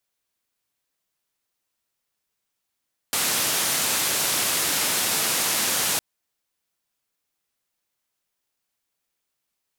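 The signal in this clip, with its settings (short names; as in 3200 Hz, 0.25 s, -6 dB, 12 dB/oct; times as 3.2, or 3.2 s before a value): noise band 120–13000 Hz, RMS -23.5 dBFS 2.86 s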